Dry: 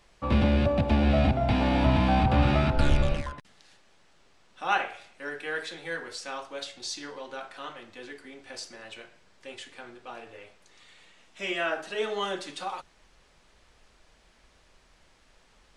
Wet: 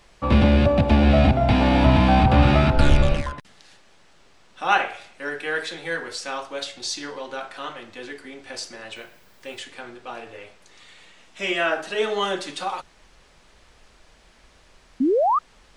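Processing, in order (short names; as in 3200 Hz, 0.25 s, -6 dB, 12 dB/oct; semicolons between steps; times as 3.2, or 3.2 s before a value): 8.95–9.59 added noise violet -70 dBFS; 15–15.39 painted sound rise 240–1300 Hz -25 dBFS; gain +6.5 dB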